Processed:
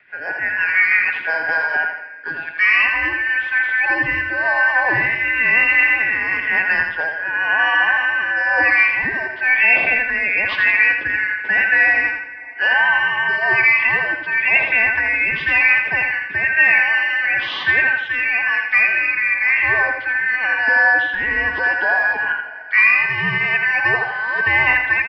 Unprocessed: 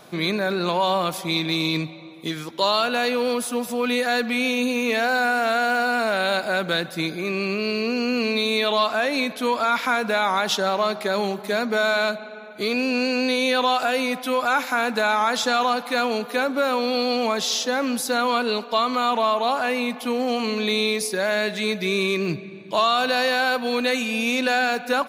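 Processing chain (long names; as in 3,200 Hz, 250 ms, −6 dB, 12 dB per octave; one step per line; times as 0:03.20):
band-splitting scrambler in four parts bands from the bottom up 2143
low-shelf EQ 380 Hz −8 dB
automatic gain control gain up to 11.5 dB
rotating-speaker cabinet horn 6 Hz, later 1 Hz, at 0:01.11
on a send: repeating echo 83 ms, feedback 38%, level −6 dB
on the sum: single-sideband voice off tune −170 Hz 290–3,200 Hz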